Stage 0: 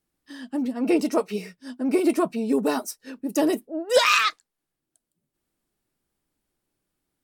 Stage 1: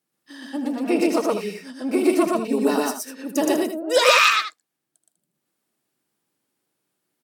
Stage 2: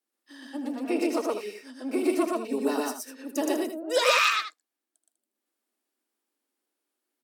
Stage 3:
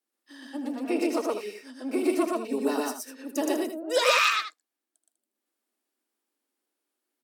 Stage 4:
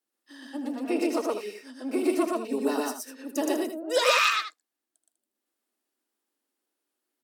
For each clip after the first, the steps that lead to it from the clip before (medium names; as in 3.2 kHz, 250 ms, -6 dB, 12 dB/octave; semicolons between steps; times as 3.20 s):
high-pass 120 Hz 24 dB/octave; bass shelf 310 Hz -5 dB; on a send: loudspeakers at several distances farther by 27 m -9 dB, 41 m 0 dB, 68 m -10 dB; on the sum: trim +1 dB
steep high-pass 230 Hz 72 dB/octave; trim -6.5 dB
no audible change
band-stop 2.3 kHz, Q 25